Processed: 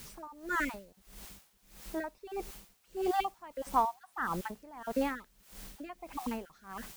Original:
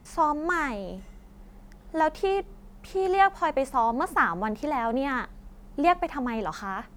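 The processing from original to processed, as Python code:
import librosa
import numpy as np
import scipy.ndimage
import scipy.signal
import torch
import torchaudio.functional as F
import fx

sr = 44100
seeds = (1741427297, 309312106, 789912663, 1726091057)

p1 = fx.spec_dropout(x, sr, seeds[0], share_pct=25)
p2 = fx.quant_dither(p1, sr, seeds[1], bits=6, dither='triangular')
p3 = p1 + (p2 * 10.0 ** (-9.0 / 20.0))
p4 = p3 * 10.0 ** (-22 * (0.5 - 0.5 * np.cos(2.0 * np.pi * 1.6 * np.arange(len(p3)) / sr)) / 20.0)
y = p4 * 10.0 ** (-4.5 / 20.0)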